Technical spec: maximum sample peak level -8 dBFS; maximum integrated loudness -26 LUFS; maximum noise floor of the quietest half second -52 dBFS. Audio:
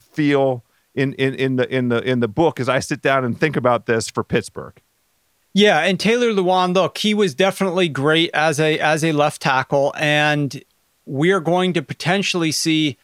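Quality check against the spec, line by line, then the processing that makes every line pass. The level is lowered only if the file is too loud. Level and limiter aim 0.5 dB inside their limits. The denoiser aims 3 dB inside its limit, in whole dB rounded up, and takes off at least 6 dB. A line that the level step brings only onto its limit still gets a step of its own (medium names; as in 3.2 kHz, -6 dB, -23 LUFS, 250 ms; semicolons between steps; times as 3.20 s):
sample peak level -2.0 dBFS: fail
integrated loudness -18.0 LUFS: fail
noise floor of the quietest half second -64 dBFS: pass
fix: trim -8.5 dB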